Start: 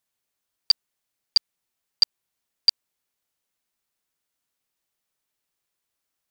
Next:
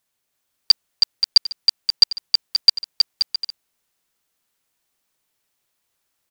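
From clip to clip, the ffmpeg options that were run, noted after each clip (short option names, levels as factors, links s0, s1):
-af "aecho=1:1:320|528|663.2|751.1|808.2:0.631|0.398|0.251|0.158|0.1,volume=1.88"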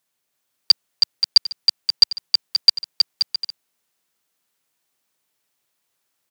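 -af "highpass=110"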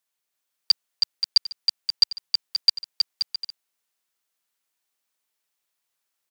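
-af "lowshelf=f=440:g=-8.5,volume=0.531"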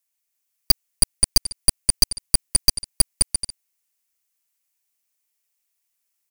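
-af "aeval=exprs='0.473*(cos(1*acos(clip(val(0)/0.473,-1,1)))-cos(1*PI/2))+0.188*(cos(4*acos(clip(val(0)/0.473,-1,1)))-cos(4*PI/2))+0.168*(cos(8*acos(clip(val(0)/0.473,-1,1)))-cos(8*PI/2))':c=same,aexciter=amount=1.9:drive=4.2:freq=2000,volume=0.531"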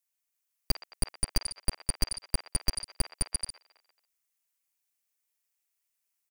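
-filter_complex "[0:a]acrossover=split=600|3000[s0][s1][s2];[s1]aecho=1:1:50|120|218|355.2|547.3:0.631|0.398|0.251|0.158|0.1[s3];[s2]alimiter=limit=0.2:level=0:latency=1:release=53[s4];[s0][s3][s4]amix=inputs=3:normalize=0,volume=0.501"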